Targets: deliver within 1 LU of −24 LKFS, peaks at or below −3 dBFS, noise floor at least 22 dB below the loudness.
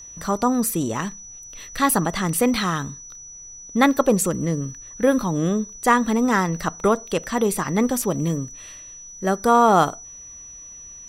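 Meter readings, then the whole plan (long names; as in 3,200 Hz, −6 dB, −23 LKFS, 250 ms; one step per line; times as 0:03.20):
interfering tone 5,900 Hz; level of the tone −38 dBFS; integrated loudness −21.0 LKFS; sample peak −2.5 dBFS; target loudness −24.0 LKFS
→ notch filter 5,900 Hz, Q 30
level −3 dB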